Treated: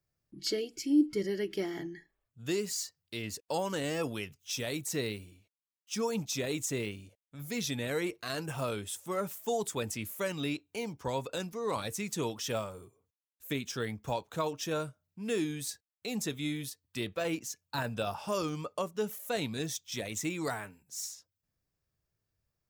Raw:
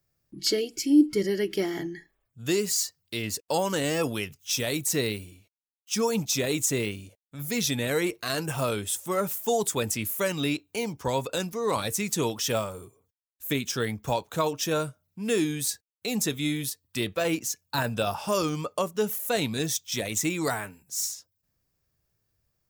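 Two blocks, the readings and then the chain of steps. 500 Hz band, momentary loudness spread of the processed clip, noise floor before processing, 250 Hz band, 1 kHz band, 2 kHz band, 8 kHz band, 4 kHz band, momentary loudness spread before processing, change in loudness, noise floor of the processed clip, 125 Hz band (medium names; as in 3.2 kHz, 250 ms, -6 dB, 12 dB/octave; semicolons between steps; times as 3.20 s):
-6.5 dB, 8 LU, -81 dBFS, -6.5 dB, -6.5 dB, -7.0 dB, -9.5 dB, -8.0 dB, 7 LU, -7.0 dB, under -85 dBFS, -6.5 dB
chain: treble shelf 7.7 kHz -6.5 dB; trim -6.5 dB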